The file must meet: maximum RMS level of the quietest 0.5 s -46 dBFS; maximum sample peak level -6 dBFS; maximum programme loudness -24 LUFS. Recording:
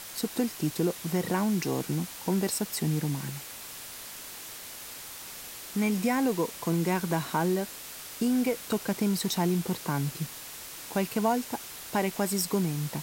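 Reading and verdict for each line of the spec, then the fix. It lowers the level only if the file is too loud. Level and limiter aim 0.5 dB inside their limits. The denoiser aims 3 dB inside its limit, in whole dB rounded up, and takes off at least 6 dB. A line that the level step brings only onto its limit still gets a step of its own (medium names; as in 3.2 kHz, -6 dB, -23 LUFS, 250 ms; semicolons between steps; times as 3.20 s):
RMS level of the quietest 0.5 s -43 dBFS: fail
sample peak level -13.5 dBFS: pass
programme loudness -30.0 LUFS: pass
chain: noise reduction 6 dB, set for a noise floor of -43 dBFS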